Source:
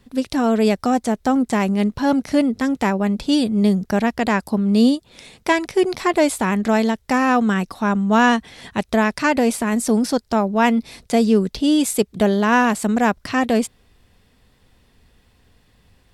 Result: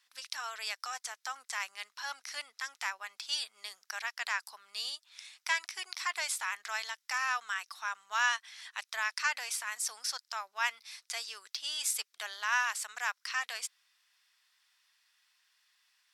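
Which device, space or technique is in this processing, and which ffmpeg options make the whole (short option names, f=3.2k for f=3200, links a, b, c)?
headphones lying on a table: -af "highpass=f=1.2k:w=0.5412,highpass=f=1.2k:w=1.3066,equalizer=f=5.5k:t=o:w=0.54:g=6.5,volume=-8.5dB"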